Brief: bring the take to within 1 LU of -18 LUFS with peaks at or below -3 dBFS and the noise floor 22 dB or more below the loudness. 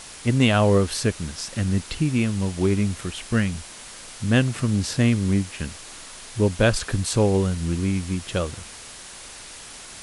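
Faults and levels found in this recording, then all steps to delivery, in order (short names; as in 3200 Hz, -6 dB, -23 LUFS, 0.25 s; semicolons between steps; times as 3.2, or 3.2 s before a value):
noise floor -41 dBFS; noise floor target -45 dBFS; loudness -23.0 LUFS; peak -4.5 dBFS; loudness target -18.0 LUFS
-> denoiser 6 dB, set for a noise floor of -41 dBFS; gain +5 dB; limiter -3 dBFS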